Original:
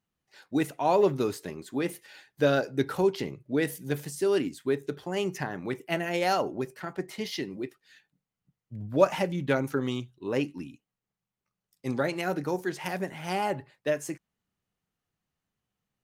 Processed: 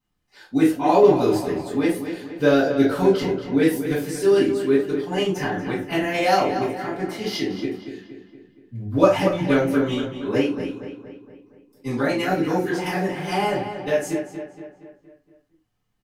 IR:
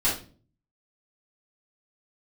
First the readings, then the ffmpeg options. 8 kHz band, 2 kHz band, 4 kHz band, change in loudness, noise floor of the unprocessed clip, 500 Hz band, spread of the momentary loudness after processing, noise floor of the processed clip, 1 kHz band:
+5.0 dB, +6.5 dB, +7.0 dB, +8.0 dB, under -85 dBFS, +8.0 dB, 13 LU, -69 dBFS, +7.5 dB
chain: -filter_complex "[0:a]asplit=2[a][b];[b]adelay=234,lowpass=f=3.6k:p=1,volume=-9dB,asplit=2[c][d];[d]adelay=234,lowpass=f=3.6k:p=1,volume=0.53,asplit=2[e][f];[f]adelay=234,lowpass=f=3.6k:p=1,volume=0.53,asplit=2[g][h];[h]adelay=234,lowpass=f=3.6k:p=1,volume=0.53,asplit=2[i][j];[j]adelay=234,lowpass=f=3.6k:p=1,volume=0.53,asplit=2[k][l];[l]adelay=234,lowpass=f=3.6k:p=1,volume=0.53[m];[a][c][e][g][i][k][m]amix=inputs=7:normalize=0[n];[1:a]atrim=start_sample=2205,atrim=end_sample=6174,asetrate=48510,aresample=44100[o];[n][o]afir=irnorm=-1:irlink=0,volume=-4.5dB"

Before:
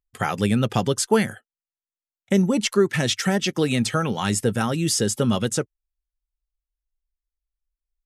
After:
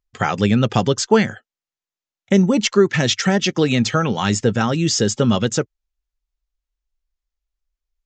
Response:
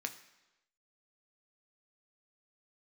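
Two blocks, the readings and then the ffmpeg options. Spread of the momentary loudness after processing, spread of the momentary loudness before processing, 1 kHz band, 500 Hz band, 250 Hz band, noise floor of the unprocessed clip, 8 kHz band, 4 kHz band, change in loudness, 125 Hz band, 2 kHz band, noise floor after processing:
4 LU, 4 LU, +4.5 dB, +4.5 dB, +4.5 dB, under -85 dBFS, +2.0 dB, +4.5 dB, +4.5 dB, +4.5 dB, +4.5 dB, under -85 dBFS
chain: -af "aresample=16000,aresample=44100,volume=4.5dB"

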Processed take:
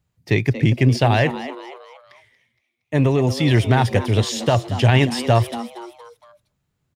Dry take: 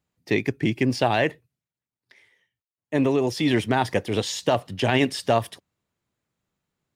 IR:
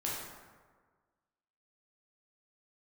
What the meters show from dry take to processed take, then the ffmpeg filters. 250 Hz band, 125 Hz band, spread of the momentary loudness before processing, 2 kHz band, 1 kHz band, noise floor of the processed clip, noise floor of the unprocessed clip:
+3.0 dB, +12.5 dB, 5 LU, +3.0 dB, +3.0 dB, -74 dBFS, under -85 dBFS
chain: -filter_complex "[0:a]lowshelf=f=170:t=q:w=1.5:g=8.5,asplit=5[a][b][c][d][e];[b]adelay=233,afreqshift=120,volume=-13.5dB[f];[c]adelay=466,afreqshift=240,volume=-20.6dB[g];[d]adelay=699,afreqshift=360,volume=-27.8dB[h];[e]adelay=932,afreqshift=480,volume=-34.9dB[i];[a][f][g][h][i]amix=inputs=5:normalize=0,volume=3dB"

